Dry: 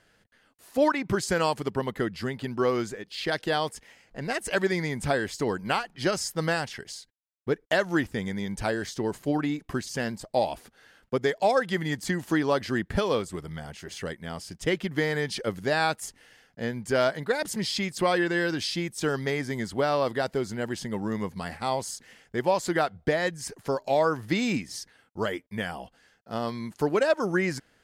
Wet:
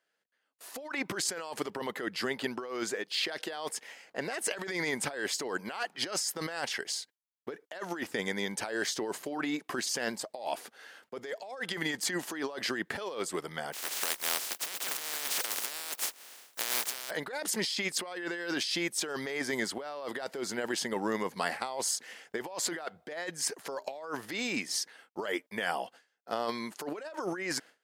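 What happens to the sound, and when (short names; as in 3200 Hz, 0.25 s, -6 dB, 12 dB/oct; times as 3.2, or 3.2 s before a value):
13.72–17.09 spectral contrast lowered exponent 0.14
whole clip: gate with hold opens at -48 dBFS; HPF 400 Hz 12 dB/oct; negative-ratio compressor -35 dBFS, ratio -1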